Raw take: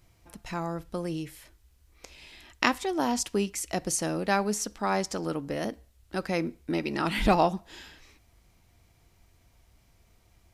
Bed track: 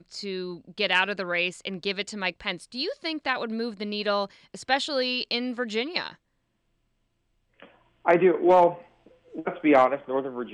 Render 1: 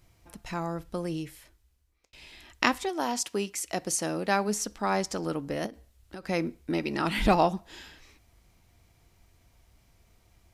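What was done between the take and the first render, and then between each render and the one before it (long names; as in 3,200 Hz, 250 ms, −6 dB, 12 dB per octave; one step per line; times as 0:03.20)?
0:01.20–0:02.13: fade out
0:02.88–0:04.47: high-pass filter 490 Hz → 120 Hz 6 dB per octave
0:05.66–0:06.27: downward compressor 5 to 1, threshold −37 dBFS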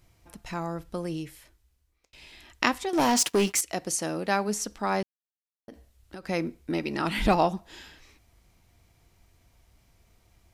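0:02.93–0:03.61: leveller curve on the samples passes 3
0:05.03–0:05.68: silence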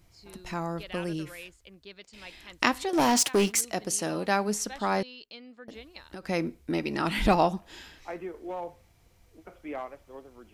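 mix in bed track −18.5 dB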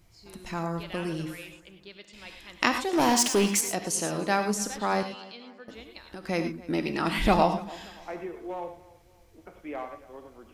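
tape delay 286 ms, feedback 41%, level −19.5 dB, low-pass 4,500 Hz
reverb whose tail is shaped and stops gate 130 ms rising, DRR 7 dB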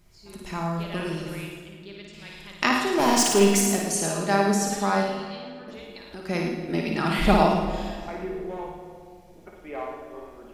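on a send: flutter between parallel walls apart 9.5 metres, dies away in 0.69 s
on the sum: rectangular room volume 3,700 cubic metres, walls mixed, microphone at 1.3 metres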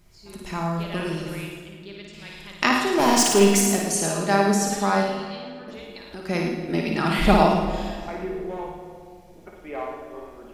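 level +2 dB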